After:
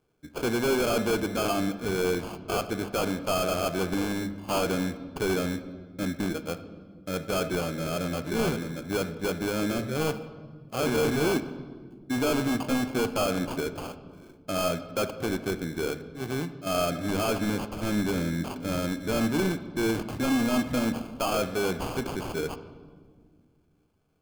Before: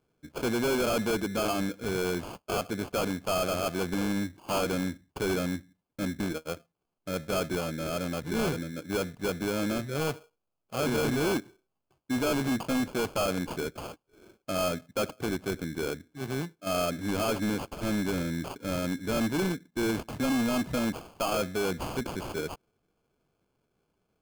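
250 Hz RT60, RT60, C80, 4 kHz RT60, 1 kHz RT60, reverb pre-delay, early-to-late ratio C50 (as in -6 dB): 2.7 s, 1.7 s, 14.5 dB, 1.1 s, 1.5 s, 3 ms, 13.0 dB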